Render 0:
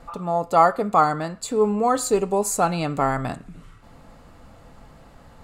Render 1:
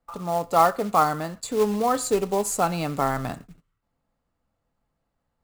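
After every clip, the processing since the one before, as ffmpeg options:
-filter_complex "[0:a]agate=range=0.0447:threshold=0.0126:ratio=16:detection=peak,acrossover=split=100[s0][s1];[s1]acrusher=bits=4:mode=log:mix=0:aa=0.000001[s2];[s0][s2]amix=inputs=2:normalize=0,volume=0.75"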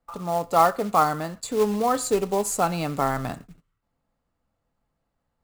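-af anull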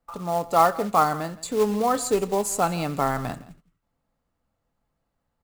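-af "aecho=1:1:168:0.106"

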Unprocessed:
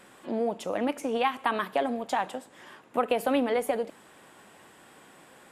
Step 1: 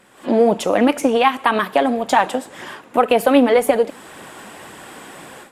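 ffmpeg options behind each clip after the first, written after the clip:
-af "aphaser=in_gain=1:out_gain=1:delay=4.4:decay=0.3:speed=1.9:type=triangular,dynaudnorm=f=150:g=3:m=5.96"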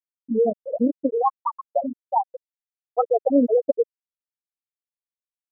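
-af "afftfilt=real='re*gte(hypot(re,im),1.26)':imag='im*gte(hypot(re,im),1.26)':win_size=1024:overlap=0.75,volume=0.631"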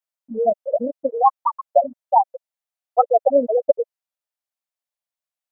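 -af "lowshelf=f=480:t=q:w=3:g=-8,volume=1.41"

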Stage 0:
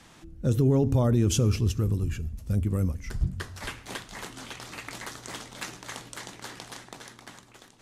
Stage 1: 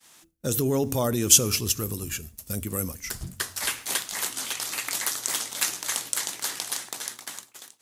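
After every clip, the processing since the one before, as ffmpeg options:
-af "aemphasis=mode=production:type=riaa,agate=range=0.0224:threshold=0.00891:ratio=3:detection=peak,volume=1.58"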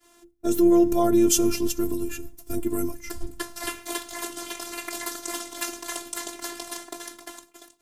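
-af "tiltshelf=f=970:g=8.5,afftfilt=real='hypot(re,im)*cos(PI*b)':imag='0':win_size=512:overlap=0.75,volume=1.78"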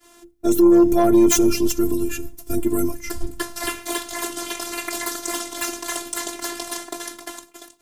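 -af "aeval=exprs='0.891*sin(PI/2*2.82*val(0)/0.891)':c=same,volume=0.473"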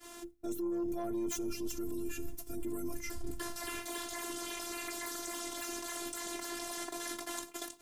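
-af "alimiter=limit=0.126:level=0:latency=1:release=15,areverse,acompressor=threshold=0.0178:ratio=6,areverse,volume=1.12"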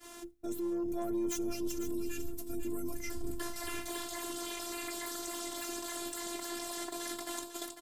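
-af "aecho=1:1:499:0.316"

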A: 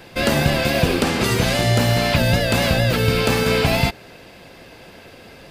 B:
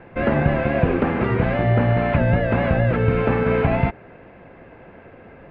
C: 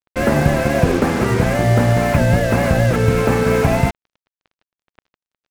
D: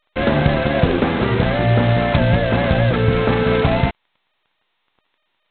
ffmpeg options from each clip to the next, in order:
-af "lowpass=f=2200:w=0.5412,lowpass=f=2200:w=1.3066,aemphasis=mode=reproduction:type=75kf"
-af "acrusher=bits=4:mix=0:aa=0.5,volume=1.5"
-af "volume=0.891" -ar 8000 -c:a adpcm_g726 -b:a 16k

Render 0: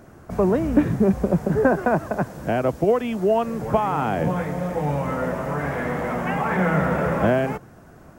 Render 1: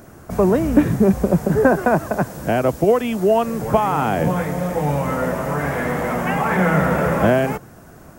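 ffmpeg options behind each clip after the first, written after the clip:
-af "highshelf=f=6200:g=10,volume=1.5"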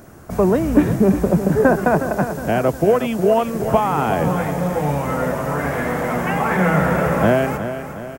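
-af "aecho=1:1:363|726|1089|1452|1815:0.299|0.149|0.0746|0.0373|0.0187"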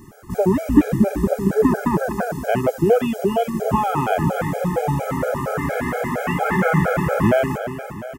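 -af "afftfilt=real='re*gt(sin(2*PI*4.3*pts/sr)*(1-2*mod(floor(b*sr/1024/420),2)),0)':imag='im*gt(sin(2*PI*4.3*pts/sr)*(1-2*mod(floor(b*sr/1024/420),2)),0)':win_size=1024:overlap=0.75,volume=1.19"

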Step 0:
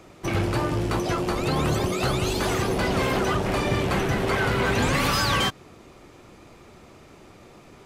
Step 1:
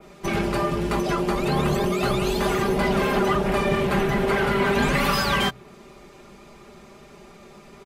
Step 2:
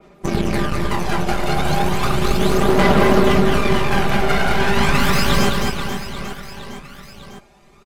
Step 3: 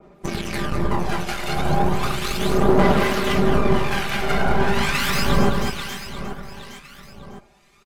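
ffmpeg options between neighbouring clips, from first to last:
-af "aecho=1:1:5:0.78,bandreject=f=61.98:t=h:w=4,bandreject=f=123.96:t=h:w=4,adynamicequalizer=threshold=0.00794:dfrequency=6300:dqfactor=0.75:tfrequency=6300:tqfactor=0.75:attack=5:release=100:ratio=0.375:range=3:mode=cutabove:tftype=bell"
-af "aeval=exprs='0.335*(cos(1*acos(clip(val(0)/0.335,-1,1)))-cos(1*PI/2))+0.075*(cos(4*acos(clip(val(0)/0.335,-1,1)))-cos(4*PI/2))+0.075*(cos(6*acos(clip(val(0)/0.335,-1,1)))-cos(6*PI/2))+0.0299*(cos(7*acos(clip(val(0)/0.335,-1,1)))-cos(7*PI/2))':c=same,aphaser=in_gain=1:out_gain=1:delay=1.4:decay=0.55:speed=0.35:type=sinusoidal,aecho=1:1:210|483|837.9|1299|1899:0.631|0.398|0.251|0.158|0.1,volume=1.12"
-filter_complex "[0:a]acrossover=split=1400[s0][s1];[s0]aeval=exprs='val(0)*(1-0.7/2+0.7/2*cos(2*PI*1.1*n/s))':c=same[s2];[s1]aeval=exprs='val(0)*(1-0.7/2-0.7/2*cos(2*PI*1.1*n/s))':c=same[s3];[s2][s3]amix=inputs=2:normalize=0"

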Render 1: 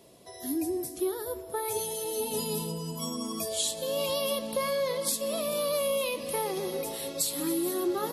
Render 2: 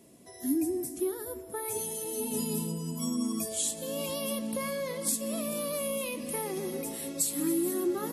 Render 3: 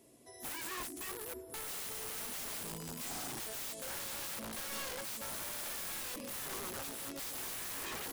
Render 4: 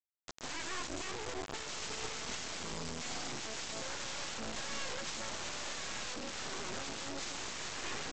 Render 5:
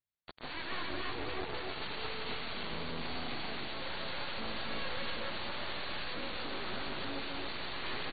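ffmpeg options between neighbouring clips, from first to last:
-af "equalizer=f=250:t=o:w=1:g=10,equalizer=f=500:t=o:w=1:g=-4,equalizer=f=1000:t=o:w=1:g=-3,equalizer=f=2000:t=o:w=1:g=3,equalizer=f=4000:t=o:w=1:g=-7,equalizer=f=8000:t=o:w=1:g=6,volume=0.708"
-af "equalizer=f=190:w=4:g=-14.5,aeval=exprs='(mod(42.2*val(0)+1,2)-1)/42.2':c=same,volume=0.596"
-af "aresample=16000,acrusher=bits=5:dc=4:mix=0:aa=0.000001,aresample=44100,alimiter=level_in=7.5:limit=0.0631:level=0:latency=1:release=127,volume=0.133,volume=4.22"
-filter_complex "[0:a]asplit=2[s0][s1];[s1]aecho=0:1:154.5|279.9:0.398|0.794[s2];[s0][s2]amix=inputs=2:normalize=0" -ar 32000 -c:a ac3 -b:a 32k

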